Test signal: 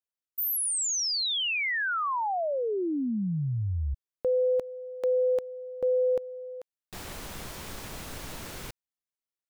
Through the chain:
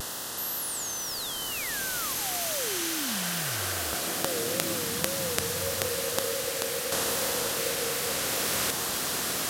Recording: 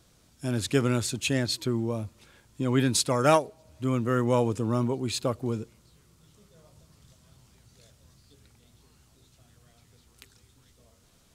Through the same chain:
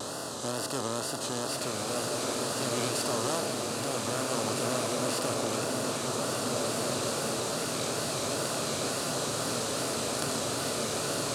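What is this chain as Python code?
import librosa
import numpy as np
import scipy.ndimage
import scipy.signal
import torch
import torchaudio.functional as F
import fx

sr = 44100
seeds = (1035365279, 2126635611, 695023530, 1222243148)

y = fx.bin_compress(x, sr, power=0.2)
y = fx.highpass(y, sr, hz=120.0, slope=6)
y = fx.high_shelf(y, sr, hz=5500.0, db=4.5)
y = fx.wow_flutter(y, sr, seeds[0], rate_hz=2.1, depth_cents=150.0)
y = fx.filter_lfo_notch(y, sr, shape='square', hz=0.33, low_hz=930.0, high_hz=2300.0, q=2.5)
y = fx.rider(y, sr, range_db=10, speed_s=2.0)
y = fx.rev_bloom(y, sr, seeds[1], attack_ms=1880, drr_db=-1.0)
y = y * 10.0 ** (-14.5 / 20.0)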